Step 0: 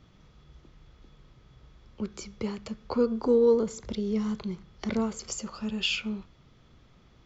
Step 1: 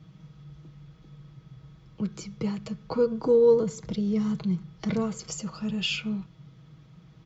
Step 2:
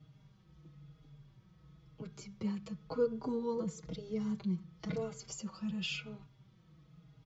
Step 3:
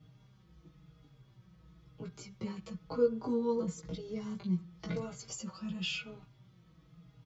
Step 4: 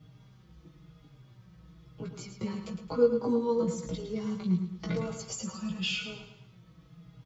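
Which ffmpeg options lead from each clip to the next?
ffmpeg -i in.wav -af "highpass=42,equalizer=frequency=150:width_type=o:width=0.83:gain=13,aecho=1:1:6.3:0.54,volume=-1.5dB" out.wav
ffmpeg -i in.wav -filter_complex "[0:a]asplit=2[link_01][link_02];[link_02]adelay=4.4,afreqshift=-0.98[link_03];[link_01][link_03]amix=inputs=2:normalize=1,volume=-6dB" out.wav
ffmpeg -i in.wav -filter_complex "[0:a]asplit=2[link_01][link_02];[link_02]adelay=17,volume=-3dB[link_03];[link_01][link_03]amix=inputs=2:normalize=0" out.wav
ffmpeg -i in.wav -af "aecho=1:1:109|218|327|436|545:0.376|0.158|0.0663|0.0278|0.0117,volume=4.5dB" out.wav

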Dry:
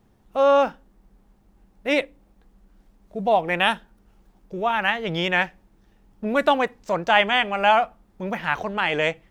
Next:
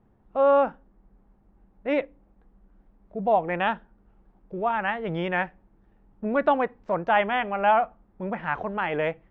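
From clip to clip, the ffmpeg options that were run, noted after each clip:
ffmpeg -i in.wav -af "lowpass=1600,volume=-2dB" out.wav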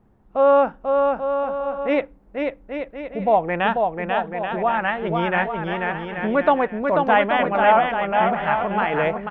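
ffmpeg -i in.wav -af "aecho=1:1:490|833|1073|1241|1359:0.631|0.398|0.251|0.158|0.1,volume=4dB" out.wav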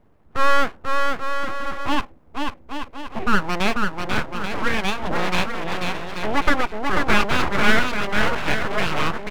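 ffmpeg -i in.wav -af "aeval=exprs='abs(val(0))':channel_layout=same,volume=2dB" out.wav

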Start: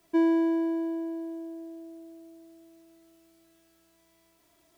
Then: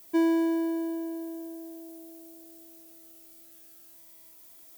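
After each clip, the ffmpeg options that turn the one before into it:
ffmpeg -i in.wav -af "aemphasis=mode=production:type=75fm" out.wav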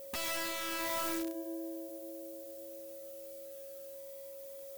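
ffmpeg -i in.wav -af "aeval=exprs='(mod(37.6*val(0)+1,2)-1)/37.6':channel_layout=same,flanger=delay=0.3:depth=1.5:regen=-71:speed=1.8:shape=triangular,aeval=exprs='val(0)+0.00316*sin(2*PI*550*n/s)':channel_layout=same,volume=4dB" out.wav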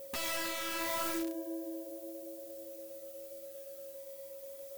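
ffmpeg -i in.wav -af "flanger=delay=5.1:depth=9.8:regen=-55:speed=0.78:shape=triangular,volume=4.5dB" out.wav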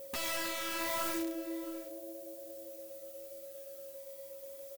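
ffmpeg -i in.wav -af "aecho=1:1:663:0.141" out.wav

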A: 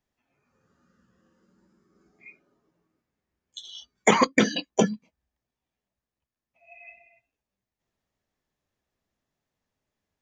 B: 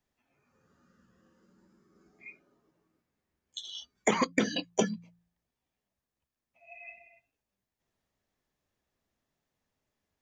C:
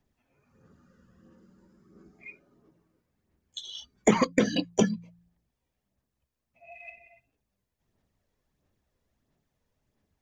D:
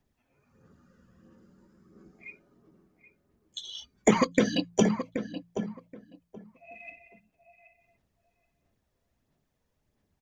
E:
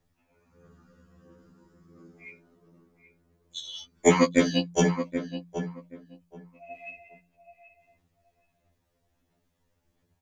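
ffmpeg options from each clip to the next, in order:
ffmpeg -i in.wav -filter_complex "[0:a]bandreject=frequency=57.6:width_type=h:width=4,bandreject=frequency=115.2:width_type=h:width=4,bandreject=frequency=172.8:width_type=h:width=4,acrossover=split=560|1200[link_01][link_02][link_03];[link_01]acompressor=threshold=-26dB:ratio=4[link_04];[link_02]acompressor=threshold=-37dB:ratio=4[link_05];[link_03]acompressor=threshold=-31dB:ratio=4[link_06];[link_04][link_05][link_06]amix=inputs=3:normalize=0" out.wav
ffmpeg -i in.wav -af "lowshelf=frequency=500:gain=8,aphaser=in_gain=1:out_gain=1:delay=2.1:decay=0.38:speed=1.5:type=sinusoidal" out.wav
ffmpeg -i in.wav -filter_complex "[0:a]asplit=2[link_01][link_02];[link_02]adelay=777,lowpass=frequency=1600:poles=1,volume=-9dB,asplit=2[link_03][link_04];[link_04]adelay=777,lowpass=frequency=1600:poles=1,volume=0.19,asplit=2[link_05][link_06];[link_06]adelay=777,lowpass=frequency=1600:poles=1,volume=0.19[link_07];[link_01][link_03][link_05][link_07]amix=inputs=4:normalize=0" out.wav
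ffmpeg -i in.wav -af "afftfilt=real='re*2*eq(mod(b,4),0)':imag='im*2*eq(mod(b,4),0)':win_size=2048:overlap=0.75,volume=5dB" out.wav

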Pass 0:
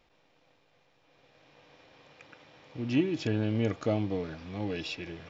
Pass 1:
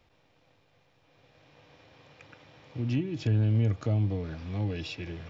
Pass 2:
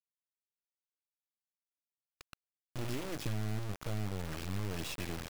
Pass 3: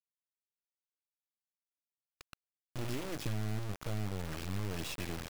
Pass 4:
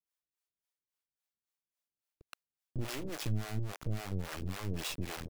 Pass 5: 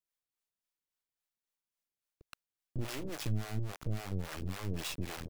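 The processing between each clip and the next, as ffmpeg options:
ffmpeg -i in.wav -filter_complex "[0:a]acrossover=split=180[link_01][link_02];[link_02]acompressor=threshold=-36dB:ratio=2.5[link_03];[link_01][link_03]amix=inputs=2:normalize=0,equalizer=frequency=94:width_type=o:width=1.3:gain=10" out.wav
ffmpeg -i in.wav -af "acompressor=threshold=-31dB:ratio=10,acrusher=bits=4:dc=4:mix=0:aa=0.000001,volume=1.5dB" out.wav
ffmpeg -i in.wav -af anull out.wav
ffmpeg -i in.wav -filter_complex "[0:a]acrossover=split=450[link_01][link_02];[link_01]aeval=exprs='val(0)*(1-1/2+1/2*cos(2*PI*3.6*n/s))':channel_layout=same[link_03];[link_02]aeval=exprs='val(0)*(1-1/2-1/2*cos(2*PI*3.6*n/s))':channel_layout=same[link_04];[link_03][link_04]amix=inputs=2:normalize=0,volume=5dB" out.wav
ffmpeg -i in.wav -af "aeval=exprs='if(lt(val(0),0),0.708*val(0),val(0))':channel_layout=same" out.wav

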